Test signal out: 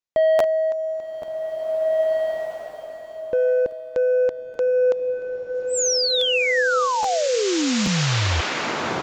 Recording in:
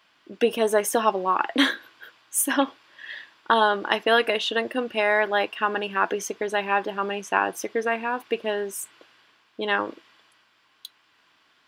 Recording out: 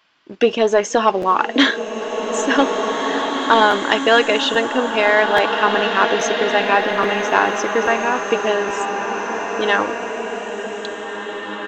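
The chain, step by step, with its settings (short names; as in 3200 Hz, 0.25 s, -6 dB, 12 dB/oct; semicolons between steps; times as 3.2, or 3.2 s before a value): sample leveller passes 1; downsampling 16000 Hz; crackling interface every 0.83 s, samples 512, repeat, from 0.38; bloom reverb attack 2.1 s, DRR 3.5 dB; gain +3 dB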